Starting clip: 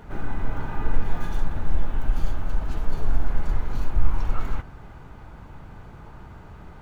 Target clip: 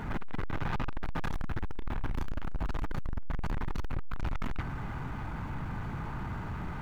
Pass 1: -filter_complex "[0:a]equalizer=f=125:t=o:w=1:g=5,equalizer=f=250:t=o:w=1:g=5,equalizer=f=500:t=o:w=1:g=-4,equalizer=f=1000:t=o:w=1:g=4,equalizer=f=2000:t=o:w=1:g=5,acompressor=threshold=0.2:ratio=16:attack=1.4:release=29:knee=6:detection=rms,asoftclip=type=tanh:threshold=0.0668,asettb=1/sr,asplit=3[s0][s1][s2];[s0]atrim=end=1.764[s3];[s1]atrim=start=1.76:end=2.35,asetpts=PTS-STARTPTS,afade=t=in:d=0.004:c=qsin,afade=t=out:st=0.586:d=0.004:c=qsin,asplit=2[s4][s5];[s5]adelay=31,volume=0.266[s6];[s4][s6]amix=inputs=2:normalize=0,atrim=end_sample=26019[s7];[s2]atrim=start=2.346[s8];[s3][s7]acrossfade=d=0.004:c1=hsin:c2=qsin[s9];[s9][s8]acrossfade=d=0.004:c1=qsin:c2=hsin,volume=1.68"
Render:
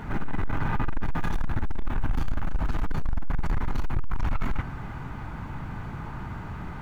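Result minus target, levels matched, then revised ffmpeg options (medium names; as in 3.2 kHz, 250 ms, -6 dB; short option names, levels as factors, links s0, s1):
saturation: distortion -5 dB
-filter_complex "[0:a]equalizer=f=125:t=o:w=1:g=5,equalizer=f=250:t=o:w=1:g=5,equalizer=f=500:t=o:w=1:g=-4,equalizer=f=1000:t=o:w=1:g=4,equalizer=f=2000:t=o:w=1:g=5,acompressor=threshold=0.2:ratio=16:attack=1.4:release=29:knee=6:detection=rms,asoftclip=type=tanh:threshold=0.0224,asettb=1/sr,asplit=3[s0][s1][s2];[s0]atrim=end=1.764[s3];[s1]atrim=start=1.76:end=2.35,asetpts=PTS-STARTPTS,afade=t=in:d=0.004:c=qsin,afade=t=out:st=0.586:d=0.004:c=qsin,asplit=2[s4][s5];[s5]adelay=31,volume=0.266[s6];[s4][s6]amix=inputs=2:normalize=0,atrim=end_sample=26019[s7];[s2]atrim=start=2.346[s8];[s3][s7]acrossfade=d=0.004:c1=hsin:c2=qsin[s9];[s9][s8]acrossfade=d=0.004:c1=qsin:c2=hsin,volume=1.68"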